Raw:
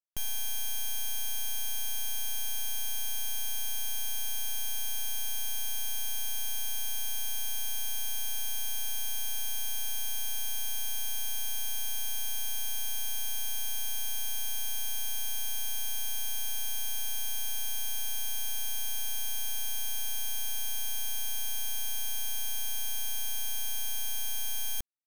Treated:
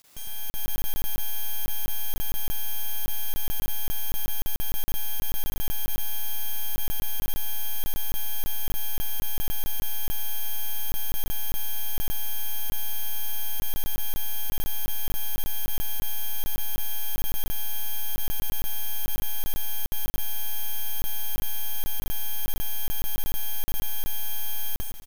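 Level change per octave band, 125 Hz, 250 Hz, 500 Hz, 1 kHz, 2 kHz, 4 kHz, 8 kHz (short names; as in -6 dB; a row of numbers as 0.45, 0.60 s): +14.0 dB, n/a, +10.0 dB, +7.0 dB, +2.5 dB, 0.0 dB, -3.5 dB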